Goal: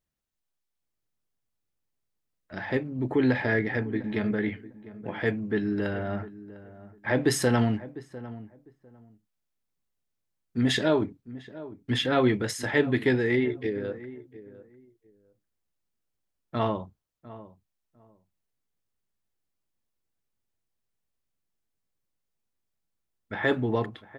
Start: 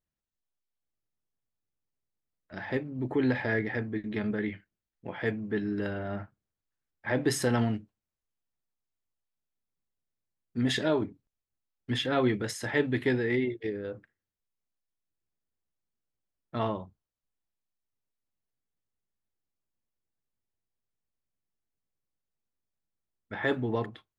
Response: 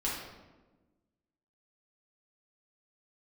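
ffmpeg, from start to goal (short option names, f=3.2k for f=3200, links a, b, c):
-filter_complex "[0:a]asplit=2[a][b];[b]adelay=701,lowpass=f=1.1k:p=1,volume=-16dB,asplit=2[c][d];[d]adelay=701,lowpass=f=1.1k:p=1,volume=0.2[e];[a][c][e]amix=inputs=3:normalize=0,volume=3.5dB"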